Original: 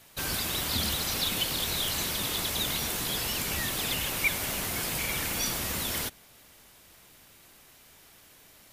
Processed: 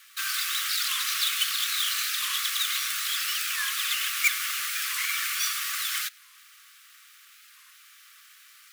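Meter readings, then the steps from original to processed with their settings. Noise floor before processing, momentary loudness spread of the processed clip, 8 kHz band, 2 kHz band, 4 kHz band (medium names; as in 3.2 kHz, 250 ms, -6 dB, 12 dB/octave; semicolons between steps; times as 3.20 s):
-56 dBFS, 4 LU, +2.5 dB, +5.0 dB, +3.5 dB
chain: square wave that keeps the level; brick-wall FIR high-pass 1.1 kHz; warped record 45 rpm, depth 160 cents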